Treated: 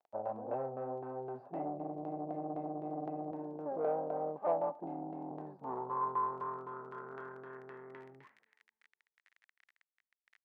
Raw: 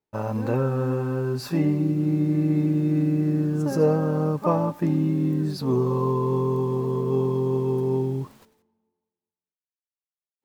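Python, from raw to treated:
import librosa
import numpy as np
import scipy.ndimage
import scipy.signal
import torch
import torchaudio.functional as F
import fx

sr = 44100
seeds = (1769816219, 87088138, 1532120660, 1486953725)

y = fx.highpass(x, sr, hz=180.0, slope=12, at=(3.31, 5.31))
y = fx.filter_lfo_lowpass(y, sr, shape='saw_down', hz=3.9, low_hz=370.0, high_hz=3900.0, q=0.72)
y = fx.dmg_crackle(y, sr, seeds[0], per_s=28.0, level_db=-35.0)
y = fx.tube_stage(y, sr, drive_db=20.0, bias=0.25)
y = fx.filter_sweep_bandpass(y, sr, from_hz=710.0, to_hz=1900.0, start_s=5.03, end_s=7.9, q=5.1)
y = y * librosa.db_to_amplitude(3.5)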